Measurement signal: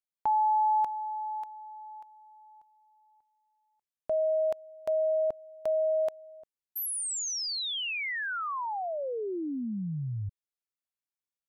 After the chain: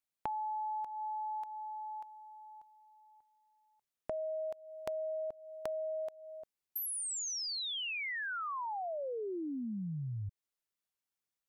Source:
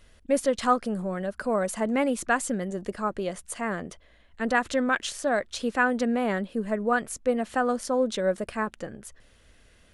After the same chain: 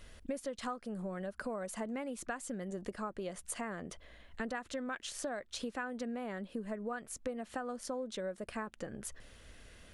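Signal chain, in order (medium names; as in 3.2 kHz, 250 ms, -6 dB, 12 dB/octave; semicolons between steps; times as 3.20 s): compression 8:1, threshold -39 dBFS; trim +2 dB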